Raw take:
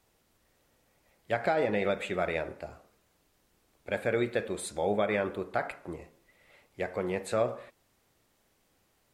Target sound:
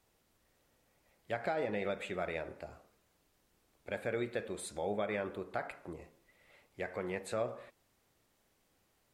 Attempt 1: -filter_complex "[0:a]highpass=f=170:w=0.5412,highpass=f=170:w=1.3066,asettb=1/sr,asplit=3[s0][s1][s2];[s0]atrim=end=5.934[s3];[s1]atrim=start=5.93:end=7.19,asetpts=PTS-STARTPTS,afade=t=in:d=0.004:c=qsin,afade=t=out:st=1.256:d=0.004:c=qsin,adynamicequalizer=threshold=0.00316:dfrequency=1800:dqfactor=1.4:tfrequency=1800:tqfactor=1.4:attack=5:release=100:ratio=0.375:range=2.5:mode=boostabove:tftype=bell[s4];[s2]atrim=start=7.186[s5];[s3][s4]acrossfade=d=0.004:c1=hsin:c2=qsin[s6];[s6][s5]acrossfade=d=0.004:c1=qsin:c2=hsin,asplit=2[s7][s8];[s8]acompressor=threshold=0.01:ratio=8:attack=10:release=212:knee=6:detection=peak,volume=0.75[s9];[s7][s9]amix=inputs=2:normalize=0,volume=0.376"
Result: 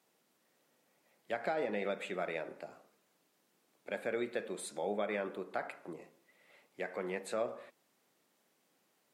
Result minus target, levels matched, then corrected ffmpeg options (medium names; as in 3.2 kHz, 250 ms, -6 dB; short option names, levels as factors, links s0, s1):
125 Hz band -6.0 dB
-filter_complex "[0:a]asettb=1/sr,asplit=3[s0][s1][s2];[s0]atrim=end=5.934[s3];[s1]atrim=start=5.93:end=7.19,asetpts=PTS-STARTPTS,afade=t=in:d=0.004:c=qsin,afade=t=out:st=1.256:d=0.004:c=qsin,adynamicequalizer=threshold=0.00316:dfrequency=1800:dqfactor=1.4:tfrequency=1800:tqfactor=1.4:attack=5:release=100:ratio=0.375:range=2.5:mode=boostabove:tftype=bell[s4];[s2]atrim=start=7.186[s5];[s3][s4]acrossfade=d=0.004:c1=hsin:c2=qsin[s6];[s6][s5]acrossfade=d=0.004:c1=qsin:c2=hsin,asplit=2[s7][s8];[s8]acompressor=threshold=0.01:ratio=8:attack=10:release=212:knee=6:detection=peak,volume=0.75[s9];[s7][s9]amix=inputs=2:normalize=0,volume=0.376"